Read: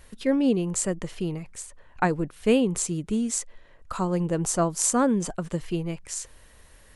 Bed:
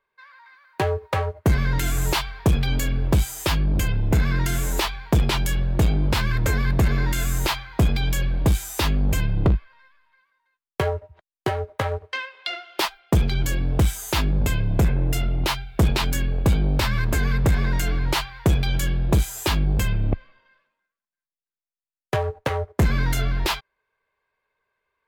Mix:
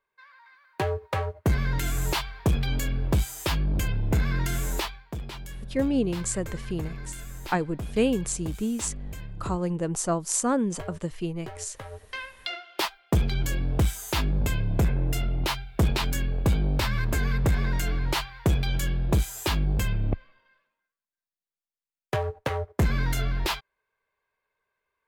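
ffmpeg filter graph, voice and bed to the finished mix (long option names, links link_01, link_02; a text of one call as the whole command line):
ffmpeg -i stem1.wav -i stem2.wav -filter_complex "[0:a]adelay=5500,volume=-2.5dB[link_01];[1:a]volume=8dB,afade=type=out:start_time=4.74:duration=0.31:silence=0.251189,afade=type=in:start_time=11.89:duration=0.41:silence=0.237137[link_02];[link_01][link_02]amix=inputs=2:normalize=0" out.wav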